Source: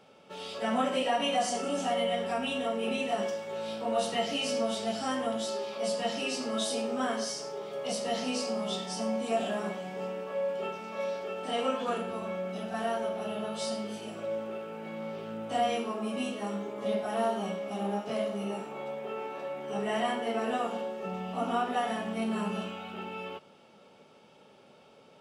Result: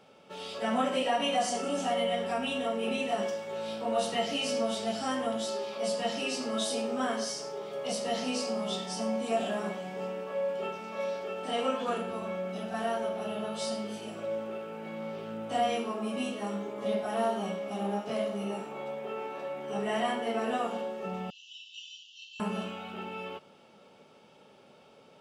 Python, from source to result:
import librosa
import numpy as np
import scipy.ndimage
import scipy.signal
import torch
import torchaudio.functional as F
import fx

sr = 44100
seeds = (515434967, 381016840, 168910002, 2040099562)

y = fx.brickwall_bandpass(x, sr, low_hz=2600.0, high_hz=7400.0, at=(21.3, 22.4))